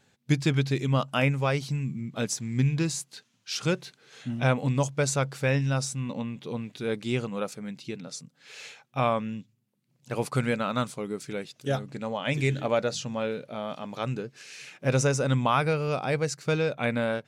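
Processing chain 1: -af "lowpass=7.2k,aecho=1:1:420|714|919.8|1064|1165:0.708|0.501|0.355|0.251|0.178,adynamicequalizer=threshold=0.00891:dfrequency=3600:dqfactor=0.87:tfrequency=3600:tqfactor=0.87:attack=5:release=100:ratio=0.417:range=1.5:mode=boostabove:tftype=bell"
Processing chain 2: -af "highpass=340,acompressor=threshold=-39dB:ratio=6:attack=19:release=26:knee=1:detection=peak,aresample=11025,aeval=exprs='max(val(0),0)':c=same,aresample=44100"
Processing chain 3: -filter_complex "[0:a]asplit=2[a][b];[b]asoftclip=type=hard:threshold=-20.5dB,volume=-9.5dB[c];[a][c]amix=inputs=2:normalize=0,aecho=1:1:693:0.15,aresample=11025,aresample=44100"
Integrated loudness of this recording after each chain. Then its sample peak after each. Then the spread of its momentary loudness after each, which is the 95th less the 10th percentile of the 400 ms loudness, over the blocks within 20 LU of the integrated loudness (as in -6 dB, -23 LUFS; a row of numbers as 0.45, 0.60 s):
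-25.5, -42.0, -26.5 LUFS; -9.0, -17.0, -10.0 dBFS; 8, 9, 15 LU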